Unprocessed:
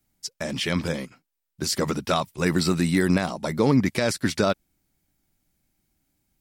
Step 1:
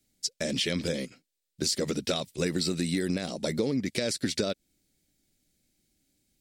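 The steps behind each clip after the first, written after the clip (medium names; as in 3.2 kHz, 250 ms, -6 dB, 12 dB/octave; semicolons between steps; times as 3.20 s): ten-band graphic EQ 250 Hz +4 dB, 500 Hz +8 dB, 1 kHz -11 dB, 2 kHz +3 dB, 4 kHz +8 dB, 8 kHz +7 dB; compression 6:1, threshold -21 dBFS, peak gain reduction 10.5 dB; trim -4 dB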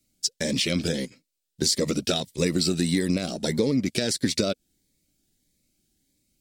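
in parallel at -5 dB: crossover distortion -43.5 dBFS; on the sum: Shepard-style phaser rising 1.6 Hz; trim +2 dB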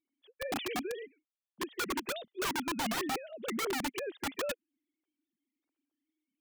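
formants replaced by sine waves; integer overflow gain 20.5 dB; trim -8.5 dB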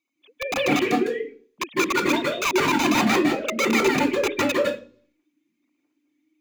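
reverberation RT60 0.40 s, pre-delay 151 ms, DRR 0 dB; trim +4 dB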